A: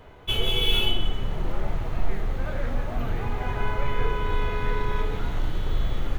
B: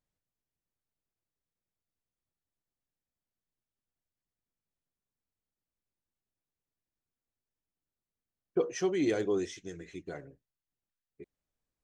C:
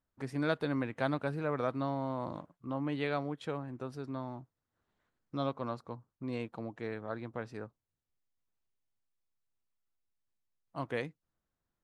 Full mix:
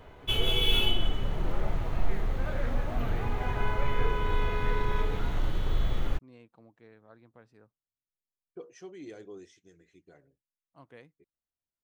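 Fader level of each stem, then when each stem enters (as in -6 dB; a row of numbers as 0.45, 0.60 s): -2.5, -15.5, -16.0 dB; 0.00, 0.00, 0.00 s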